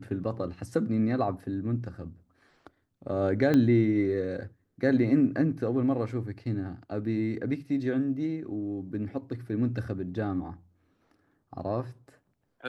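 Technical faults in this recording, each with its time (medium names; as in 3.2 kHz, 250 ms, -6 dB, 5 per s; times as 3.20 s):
3.54 s: pop -14 dBFS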